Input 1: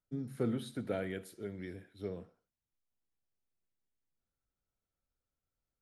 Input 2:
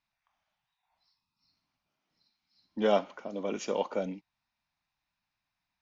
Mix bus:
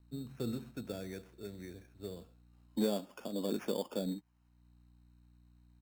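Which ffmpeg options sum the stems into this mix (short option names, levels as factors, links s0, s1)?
-filter_complex "[0:a]aeval=exprs='val(0)+0.00126*(sin(2*PI*60*n/s)+sin(2*PI*2*60*n/s)/2+sin(2*PI*3*60*n/s)/3+sin(2*PI*4*60*n/s)/4+sin(2*PI*5*60*n/s)/5)':c=same,volume=0.668[s0];[1:a]alimiter=limit=0.106:level=0:latency=1:release=321,volume=1.26,asplit=2[s1][s2];[s2]apad=whole_len=260935[s3];[s0][s3]sidechaincompress=threshold=0.00282:ratio=3:attack=16:release=407[s4];[s4][s1]amix=inputs=2:normalize=0,highshelf=f=2100:t=q:w=1.5:g=-10,acrossover=split=430|3000[s5][s6][s7];[s6]acompressor=threshold=0.00501:ratio=6[s8];[s5][s8][s7]amix=inputs=3:normalize=0,acrusher=samples=11:mix=1:aa=0.000001"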